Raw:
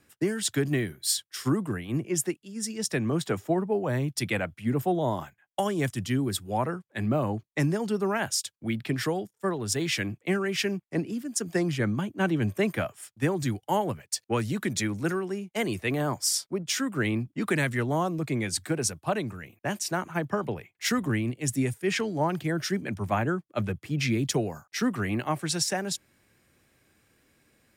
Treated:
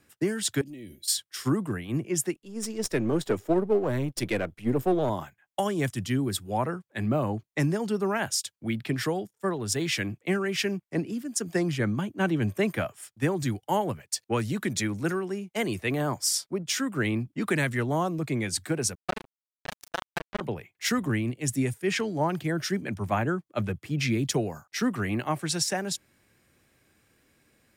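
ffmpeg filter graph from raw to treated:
ffmpeg -i in.wav -filter_complex "[0:a]asettb=1/sr,asplit=3[link_01][link_02][link_03];[link_01]atrim=end=0.614[link_04];[link_02]atrim=start=0.61:end=1.08,asetpts=PTS-STARTPTS,afade=type=in:duration=0.004:curve=qsin,afade=type=out:start_time=0.466:duration=0.004:curve=qsin,asuperstop=centerf=1200:order=4:qfactor=0.6,acompressor=threshold=-38dB:ratio=16:attack=3.2:release=140:knee=1:detection=peak,aecho=1:1:3.6:0.57,atrim=end_sample=20727[link_05];[link_03]atrim=start=1.076[link_06];[link_04][link_05]acrossfade=duration=0.004:curve1=hsin:curve2=qsin[link_07];[link_07][link_06]acrossfade=duration=0.004:curve1=qsin:curve2=hsin,asettb=1/sr,asplit=3[link_08][link_09][link_10];[link_08]atrim=end=2.354[link_11];[link_09]atrim=start=2.35:end=5.1,asetpts=PTS-STARTPTS,afade=type=in:duration=0.004:curve=qsin,afade=type=out:start_time=2.746:duration=0.004:curve=qsin,aeval=exprs='if(lt(val(0),0),0.447*val(0),val(0))':channel_layout=same,equalizer=frequency=390:width_type=o:width=1.2:gain=7[link_12];[link_10]atrim=start=5.096[link_13];[link_11][link_12]acrossfade=duration=0.004:curve1=hsin:curve2=qsin[link_14];[link_14][link_13]acrossfade=duration=0.004:curve1=qsin:curve2=hsin,asettb=1/sr,asplit=3[link_15][link_16][link_17];[link_15]atrim=end=18.954[link_18];[link_16]atrim=start=18.95:end=20.41,asetpts=PTS-STARTPTS,afade=type=in:duration=0.004:curve=qsin,afade=type=out:start_time=1.456:duration=0.004:curve=qsin,tremolo=f=27:d=0.75,acrusher=bits=3:mix=0:aa=0.5[link_19];[link_17]atrim=start=20.406[link_20];[link_18][link_19]acrossfade=duration=0.004:curve1=hsin:curve2=qsin[link_21];[link_21][link_20]acrossfade=duration=0.004:curve1=qsin:curve2=hsin" out.wav

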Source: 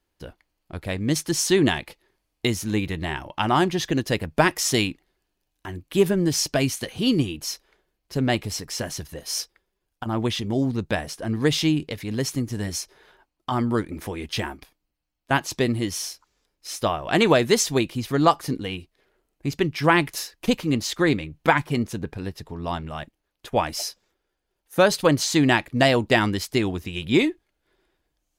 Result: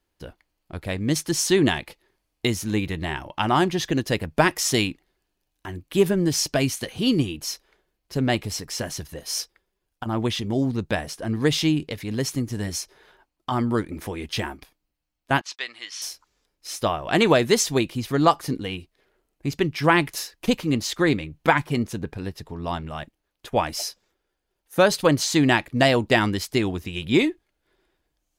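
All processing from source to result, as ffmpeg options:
ffmpeg -i in.wav -filter_complex "[0:a]asettb=1/sr,asplit=3[link_01][link_02][link_03];[link_01]atrim=end=15.414[link_04];[link_02]atrim=start=15.41:end=16.02,asetpts=PTS-STARTPTS,afade=type=in:duration=0.004:curve=qsin,afade=type=out:start_time=0.606:duration=0.004:curve=qsin,agate=range=-41dB:threshold=-40dB:ratio=16:release=100:detection=peak,asuperpass=centerf=2600:order=4:qfactor=0.63,acompressor=mode=upward:threshold=-42dB:ratio=2.5:attack=3.2:release=140:knee=2.83:detection=peak[link_05];[link_03]atrim=start=16.016[link_06];[link_04][link_05]acrossfade=duration=0.004:curve1=hsin:curve2=qsin[link_07];[link_07][link_06]acrossfade=duration=0.004:curve1=qsin:curve2=hsin" out.wav

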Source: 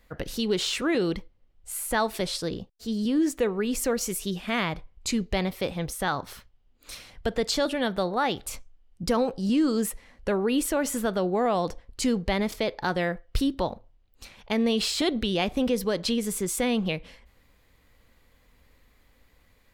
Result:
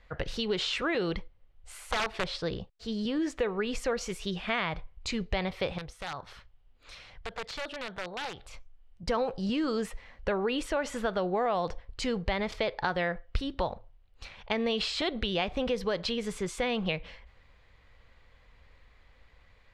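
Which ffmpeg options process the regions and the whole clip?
ffmpeg -i in.wav -filter_complex "[0:a]asettb=1/sr,asplit=3[link_01][link_02][link_03];[link_01]atrim=end=1.914[link_04];[link_02]atrim=start=1.91:end=2.46,asetpts=PTS-STARTPTS,afade=type=in:duration=0.004:curve=qsin,afade=type=out:start_time=0.546:duration=0.004:curve=qsin,lowpass=frequency=3600:poles=1,aeval=exprs='(mod(8.91*val(0)+1,2)-1)/8.91':channel_layout=same[link_05];[link_03]atrim=start=2.456[link_06];[link_04][link_05]acrossfade=duration=0.004:curve1=hsin:curve2=qsin[link_07];[link_07][link_06]acrossfade=duration=0.004:curve1=qsin:curve2=hsin,asettb=1/sr,asplit=3[link_08][link_09][link_10];[link_08]atrim=end=5.784[link_11];[link_09]atrim=start=5.78:end=9.08,asetpts=PTS-STARTPTS,afade=type=in:duration=0.004:curve=qsin,afade=type=out:start_time=3.296:duration=0.004:curve=qsin,acompressor=threshold=-54dB:ratio=1.5:attack=3.2:release=140:knee=1:detection=peak,aeval=exprs='(mod(29.9*val(0)+1,2)-1)/29.9':channel_layout=same[link_12];[link_10]atrim=start=9.076[link_13];[link_11][link_12]acrossfade=duration=0.004:curve1=hsin:curve2=qsin[link_14];[link_14][link_13]acrossfade=duration=0.004:curve1=qsin:curve2=hsin,equalizer=frequency=260:width_type=o:width=1.2:gain=-10,acompressor=threshold=-29dB:ratio=3,lowpass=3800,volume=3dB" out.wav

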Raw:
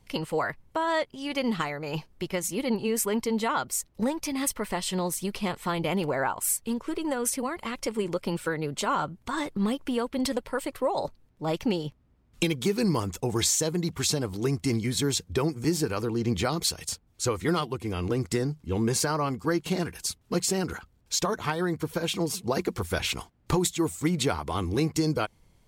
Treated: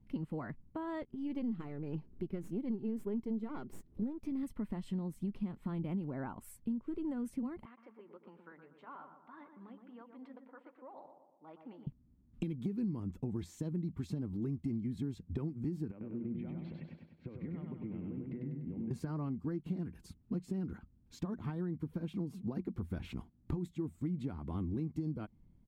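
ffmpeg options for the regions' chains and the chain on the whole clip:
ffmpeg -i in.wav -filter_complex "[0:a]asettb=1/sr,asplit=3[link_01][link_02][link_03];[link_01]atrim=end=1.024[link_04];[link_02]atrim=start=1.02:end=4.43,asetpts=PTS-STARTPTS,afade=type=in:duration=0.004:curve=qsin,afade=type=out:start_time=3.406:duration=0.004:curve=qsin,aeval=exprs='if(lt(val(0),0),0.447*val(0),val(0))':channel_layout=same,equalizer=frequency=410:width=2.8:gain=9.5,acompressor=mode=upward:threshold=-37dB:ratio=2.5:attack=3.2:release=140:knee=2.83:detection=peak[link_05];[link_03]atrim=start=4.426[link_06];[link_04][link_05]acrossfade=duration=0.004:curve1=hsin:curve2=qsin[link_07];[link_07][link_06]acrossfade=duration=0.004:curve1=qsin:curve2=hsin,asettb=1/sr,asplit=3[link_08][link_09][link_10];[link_08]atrim=end=7.654[link_11];[link_09]atrim=start=7.65:end=11.87,asetpts=PTS-STARTPTS,afade=type=in:duration=0.004:curve=qsin,afade=type=out:start_time=4.216:duration=0.004:curve=qsin,flanger=delay=0.9:depth=1.7:regen=-84:speed=1.2:shape=triangular,highpass=800,lowpass=2100,asplit=2[link_12][link_13];[link_13]adelay=120,lowpass=frequency=1500:poles=1,volume=-6.5dB,asplit=2[link_14][link_15];[link_15]adelay=120,lowpass=frequency=1500:poles=1,volume=0.54,asplit=2[link_16][link_17];[link_17]adelay=120,lowpass=frequency=1500:poles=1,volume=0.54,asplit=2[link_18][link_19];[link_19]adelay=120,lowpass=frequency=1500:poles=1,volume=0.54,asplit=2[link_20][link_21];[link_21]adelay=120,lowpass=frequency=1500:poles=1,volume=0.54,asplit=2[link_22][link_23];[link_23]adelay=120,lowpass=frequency=1500:poles=1,volume=0.54,asplit=2[link_24][link_25];[link_25]adelay=120,lowpass=frequency=1500:poles=1,volume=0.54[link_26];[link_12][link_14][link_16][link_18][link_20][link_22][link_24][link_26]amix=inputs=8:normalize=0,atrim=end_sample=186102[link_27];[link_10]atrim=start=11.866[link_28];[link_11][link_27]acrossfade=duration=0.004:curve1=hsin:curve2=qsin[link_29];[link_29][link_28]acrossfade=duration=0.004:curve1=qsin:curve2=hsin,asettb=1/sr,asplit=3[link_30][link_31][link_32];[link_30]atrim=end=15.914[link_33];[link_31]atrim=start=15.91:end=18.91,asetpts=PTS-STARTPTS,afade=type=in:duration=0.004:curve=qsin,afade=type=out:start_time=2.996:duration=0.004:curve=qsin,highpass=150,equalizer=frequency=160:width_type=q:width=4:gain=7,equalizer=frequency=560:width_type=q:width=4:gain=7,equalizer=frequency=1200:width_type=q:width=4:gain=-7,equalizer=frequency=2200:width_type=q:width=4:gain=7,lowpass=frequency=2700:width=0.5412,lowpass=frequency=2700:width=1.3066,acompressor=threshold=-35dB:ratio=16:attack=3.2:release=140:knee=1:detection=peak,aecho=1:1:98|196|294|392|490|588|686:0.708|0.375|0.199|0.105|0.0559|0.0296|0.0157,atrim=end_sample=132300[link_34];[link_32]atrim=start=18.906[link_35];[link_33][link_34]acrossfade=duration=0.004:curve1=hsin:curve2=qsin[link_36];[link_36][link_35]acrossfade=duration=0.004:curve1=qsin:curve2=hsin,firequalizer=gain_entry='entry(110,0);entry(230,6);entry(460,-12);entry(5800,-29);entry(14000,-24)':delay=0.05:min_phase=1,acompressor=threshold=-32dB:ratio=4,volume=-3dB" out.wav

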